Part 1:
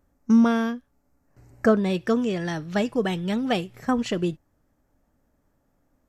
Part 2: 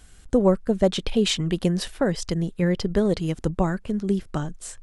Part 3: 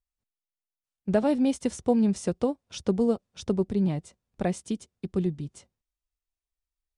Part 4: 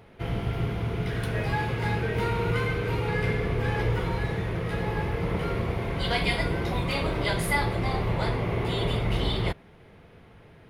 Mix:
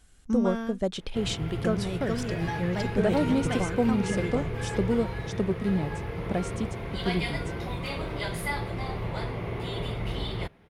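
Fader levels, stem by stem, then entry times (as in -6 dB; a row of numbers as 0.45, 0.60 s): -9.5, -8.5, -2.0, -5.5 dB; 0.00, 0.00, 1.90, 0.95 s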